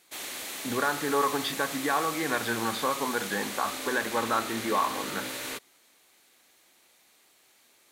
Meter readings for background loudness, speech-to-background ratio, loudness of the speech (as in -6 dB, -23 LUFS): -35.0 LUFS, 5.5 dB, -29.5 LUFS